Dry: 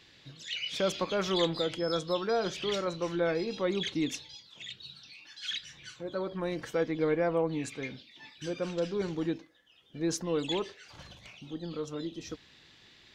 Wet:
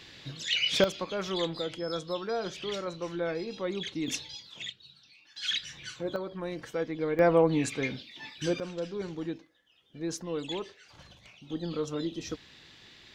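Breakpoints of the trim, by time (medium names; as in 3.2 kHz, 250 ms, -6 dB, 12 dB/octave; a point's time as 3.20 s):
+8 dB
from 0.84 s -3 dB
from 4.08 s +5 dB
from 4.70 s -7 dB
from 5.36 s +5 dB
from 6.16 s -2.5 dB
from 7.19 s +6.5 dB
from 8.60 s -3.5 dB
from 11.50 s +4 dB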